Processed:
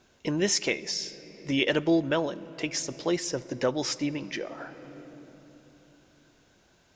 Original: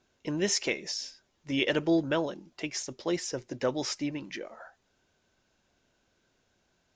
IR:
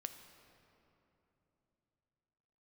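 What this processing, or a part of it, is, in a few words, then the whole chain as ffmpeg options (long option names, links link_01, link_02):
ducked reverb: -filter_complex "[0:a]asplit=3[link_01][link_02][link_03];[1:a]atrim=start_sample=2205[link_04];[link_02][link_04]afir=irnorm=-1:irlink=0[link_05];[link_03]apad=whole_len=306669[link_06];[link_05][link_06]sidechaincompress=threshold=-42dB:ratio=4:attack=28:release=750,volume=9dB[link_07];[link_01][link_07]amix=inputs=2:normalize=0"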